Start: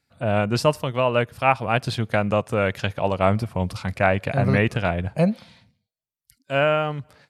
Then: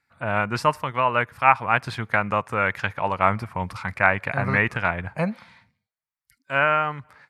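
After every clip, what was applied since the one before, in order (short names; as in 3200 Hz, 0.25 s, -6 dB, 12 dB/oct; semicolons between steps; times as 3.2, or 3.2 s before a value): band shelf 1400 Hz +11.5 dB; gain -6 dB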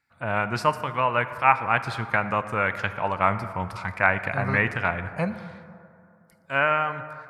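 plate-style reverb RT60 2.7 s, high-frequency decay 0.35×, DRR 11 dB; gain -2 dB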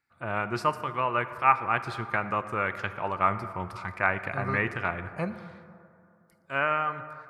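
small resonant body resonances 360/1200 Hz, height 9 dB; gain -5.5 dB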